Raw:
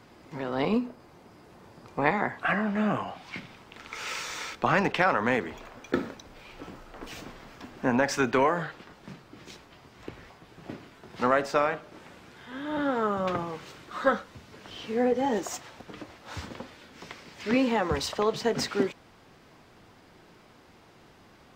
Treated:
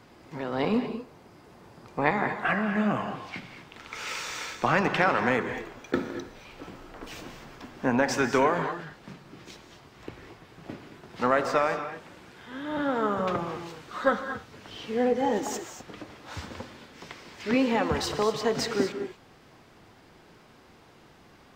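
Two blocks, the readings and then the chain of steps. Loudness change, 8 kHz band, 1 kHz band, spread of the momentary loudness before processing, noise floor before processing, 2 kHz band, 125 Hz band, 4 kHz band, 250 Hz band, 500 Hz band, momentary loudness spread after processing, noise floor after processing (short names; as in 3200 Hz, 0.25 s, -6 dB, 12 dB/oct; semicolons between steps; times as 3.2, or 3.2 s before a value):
0.0 dB, +0.5 dB, +0.5 dB, 22 LU, -56 dBFS, +1.0 dB, +1.0 dB, +0.5 dB, +0.5 dB, +0.5 dB, 21 LU, -55 dBFS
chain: non-linear reverb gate 0.26 s rising, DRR 8 dB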